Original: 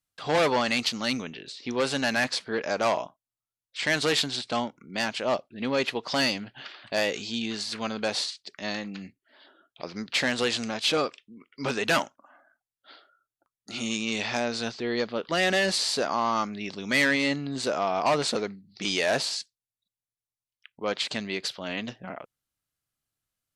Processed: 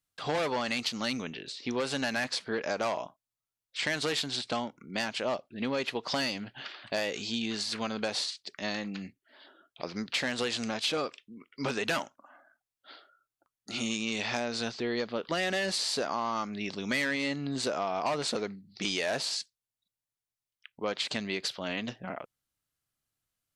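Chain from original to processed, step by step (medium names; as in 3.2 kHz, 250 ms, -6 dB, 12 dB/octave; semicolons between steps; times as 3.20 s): compression 4:1, threshold -28 dBFS, peak gain reduction 8 dB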